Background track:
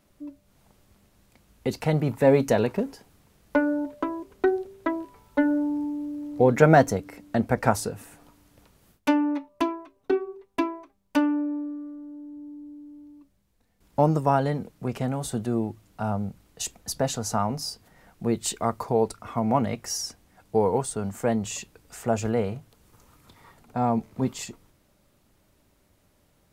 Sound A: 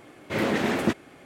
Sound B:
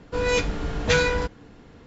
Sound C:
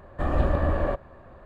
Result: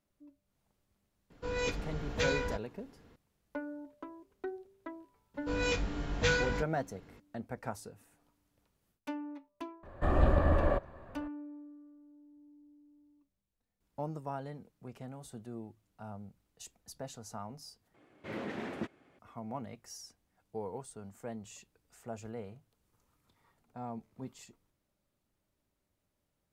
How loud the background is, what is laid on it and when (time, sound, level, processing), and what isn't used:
background track -18 dB
1.30 s: add B -11.5 dB
5.34 s: add B -10 dB + doubling 21 ms -3.5 dB
9.83 s: add C -3 dB
17.94 s: replace with A -14.5 dB + low-pass 3.1 kHz 6 dB/octave

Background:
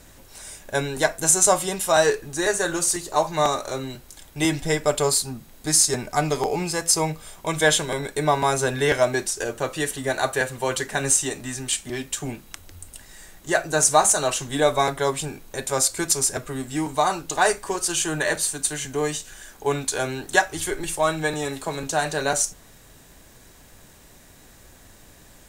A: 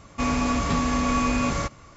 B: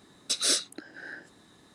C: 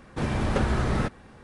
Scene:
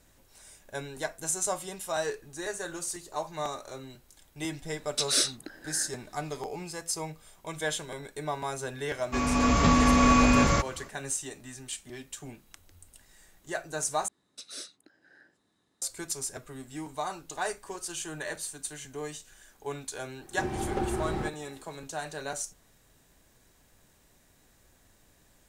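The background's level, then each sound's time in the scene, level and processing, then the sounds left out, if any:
background -13 dB
4.68 s: add B -0.5 dB
8.94 s: add A -5.5 dB + level rider gain up to 9 dB
14.08 s: replace with B -16.5 dB
20.21 s: add C -10.5 dB + small resonant body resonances 360/780 Hz, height 17 dB, ringing for 85 ms

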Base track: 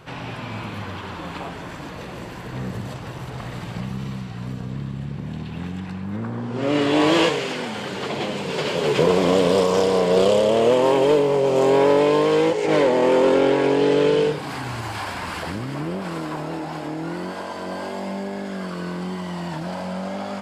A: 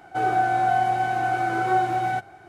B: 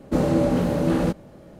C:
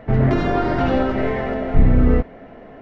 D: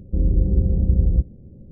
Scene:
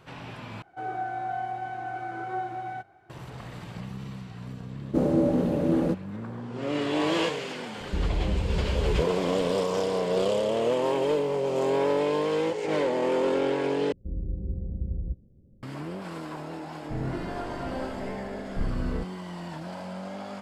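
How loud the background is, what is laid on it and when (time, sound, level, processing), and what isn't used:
base track -8.5 dB
0.62 s: replace with A -10.5 dB + low-pass 3 kHz 6 dB/octave
4.82 s: add B -12 dB + peaking EQ 340 Hz +11 dB 2.6 oct
7.80 s: add D -6 dB + peak limiter -13.5 dBFS
13.92 s: replace with D -14 dB
16.82 s: add C -16 dB

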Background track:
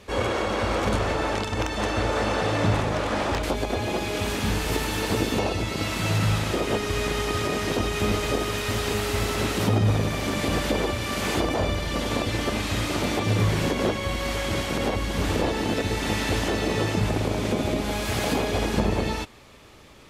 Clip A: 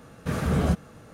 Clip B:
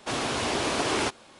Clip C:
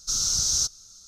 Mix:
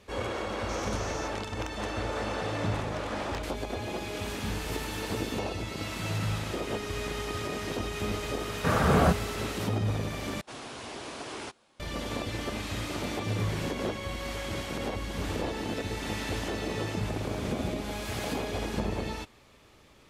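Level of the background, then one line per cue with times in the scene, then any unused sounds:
background track -8 dB
0.61 s: add C -17.5 dB + peak limiter -19.5 dBFS
8.38 s: add A -2.5 dB + peaking EQ 980 Hz +11.5 dB 2.5 oct
10.41 s: replace with B -13 dB
16.95 s: add A -14 dB

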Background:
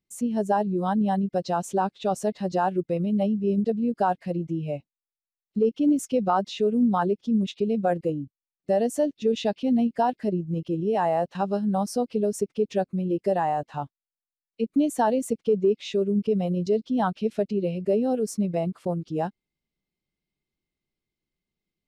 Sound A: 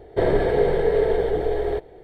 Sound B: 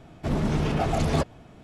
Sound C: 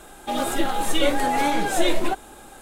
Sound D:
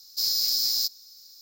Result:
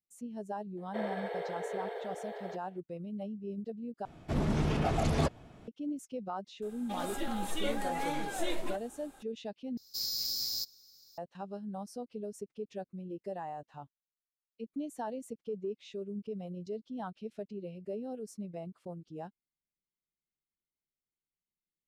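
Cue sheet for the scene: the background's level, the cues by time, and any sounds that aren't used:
background -16 dB
0.77 s: add A -11.5 dB + high-pass 560 Hz 24 dB/octave
4.05 s: replace with B -5 dB
6.62 s: add C -13.5 dB
9.77 s: replace with D -10 dB + bass shelf 470 Hz +9.5 dB

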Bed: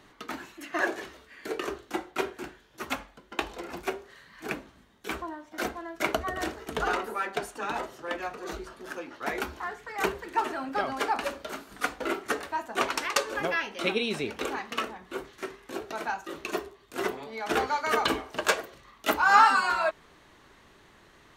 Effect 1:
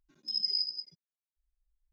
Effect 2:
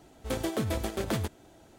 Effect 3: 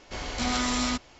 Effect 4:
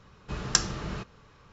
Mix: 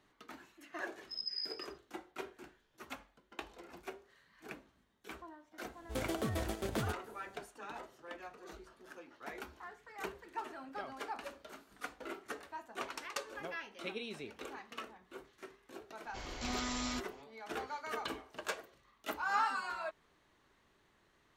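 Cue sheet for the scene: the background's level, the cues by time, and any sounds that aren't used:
bed -14.5 dB
0.83 s: add 1 -9.5 dB
5.65 s: add 2 -6.5 dB
16.03 s: add 3 -11 dB
not used: 4

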